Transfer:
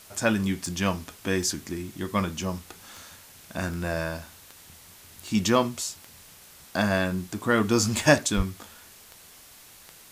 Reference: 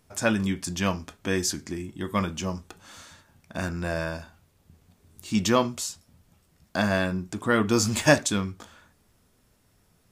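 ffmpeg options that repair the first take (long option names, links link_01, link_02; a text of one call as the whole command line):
ffmpeg -i in.wav -filter_complex "[0:a]adeclick=threshold=4,asplit=3[link_01][link_02][link_03];[link_01]afade=type=out:start_time=8.36:duration=0.02[link_04];[link_02]highpass=frequency=140:width=0.5412,highpass=frequency=140:width=1.3066,afade=type=in:start_time=8.36:duration=0.02,afade=type=out:start_time=8.48:duration=0.02[link_05];[link_03]afade=type=in:start_time=8.48:duration=0.02[link_06];[link_04][link_05][link_06]amix=inputs=3:normalize=0,afwtdn=0.0035" out.wav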